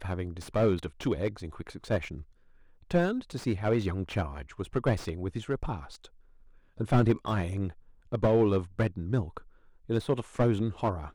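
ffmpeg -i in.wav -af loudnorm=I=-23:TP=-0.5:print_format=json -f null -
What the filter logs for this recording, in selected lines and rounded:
"input_i" : "-29.9",
"input_tp" : "-10.3",
"input_lra" : "2.9",
"input_thresh" : "-40.8",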